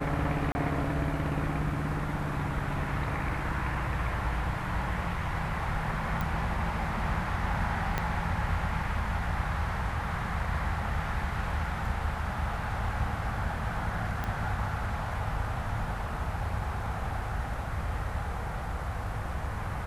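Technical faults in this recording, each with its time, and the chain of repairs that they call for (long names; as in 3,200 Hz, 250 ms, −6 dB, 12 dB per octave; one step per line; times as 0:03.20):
0:00.52–0:00.55: drop-out 30 ms
0:06.21: click
0:07.98: click −14 dBFS
0:14.24: click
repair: click removal
repair the gap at 0:00.52, 30 ms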